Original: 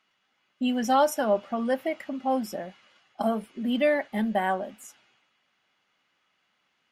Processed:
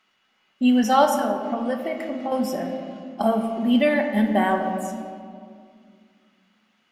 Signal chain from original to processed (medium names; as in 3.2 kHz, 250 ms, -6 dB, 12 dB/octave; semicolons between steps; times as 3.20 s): 1.05–2.32 s: compression, threshold -28 dBFS, peak gain reduction 10 dB; on a send: reverberation RT60 2.2 s, pre-delay 4 ms, DRR 3.5 dB; on the sum: trim +4 dB